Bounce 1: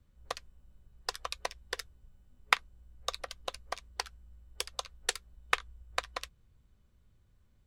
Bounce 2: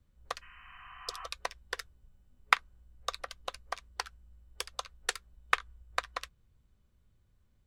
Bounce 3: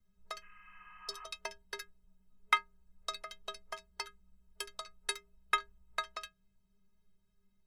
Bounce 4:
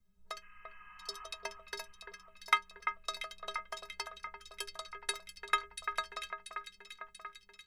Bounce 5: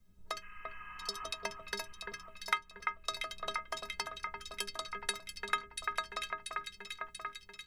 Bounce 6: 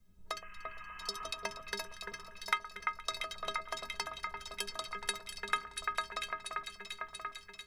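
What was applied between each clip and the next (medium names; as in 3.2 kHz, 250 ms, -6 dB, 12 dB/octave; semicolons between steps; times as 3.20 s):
dynamic bell 1.4 kHz, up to +6 dB, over -48 dBFS, Q 1.1; spectral replace 0.45–1.24 s, 690–3100 Hz both; trim -2.5 dB
inharmonic resonator 190 Hz, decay 0.28 s, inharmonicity 0.03; trim +9 dB
echo whose repeats swap between lows and highs 343 ms, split 2.3 kHz, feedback 76%, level -6.5 dB
octave divider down 1 oct, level -3 dB; compression 2:1, threshold -43 dBFS, peak gain reduction 12 dB; trim +6.5 dB
echo whose repeats swap between lows and highs 118 ms, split 1.5 kHz, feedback 77%, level -13.5 dB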